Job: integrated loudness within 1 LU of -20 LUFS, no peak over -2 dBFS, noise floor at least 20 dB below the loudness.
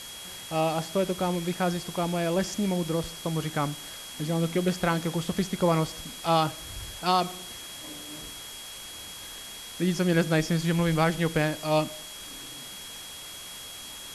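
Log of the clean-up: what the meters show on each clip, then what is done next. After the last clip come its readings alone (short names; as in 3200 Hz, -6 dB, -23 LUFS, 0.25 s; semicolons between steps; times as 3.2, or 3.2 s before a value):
steady tone 3300 Hz; tone level -43 dBFS; noise floor -42 dBFS; noise floor target -49 dBFS; loudness -29.0 LUFS; peak -12.0 dBFS; loudness target -20.0 LUFS
-> notch 3300 Hz, Q 30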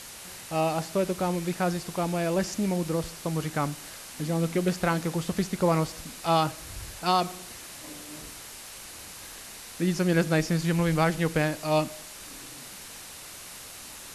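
steady tone none; noise floor -44 dBFS; noise floor target -48 dBFS
-> denoiser 6 dB, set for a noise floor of -44 dBFS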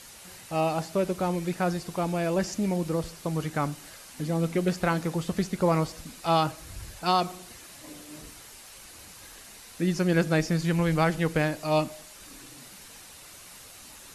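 noise floor -48 dBFS; loudness -27.5 LUFS; peak -12.0 dBFS; loudness target -20.0 LUFS
-> gain +7.5 dB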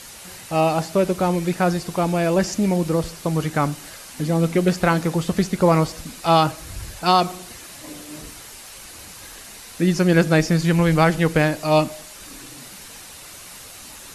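loudness -20.0 LUFS; peak -4.5 dBFS; noise floor -40 dBFS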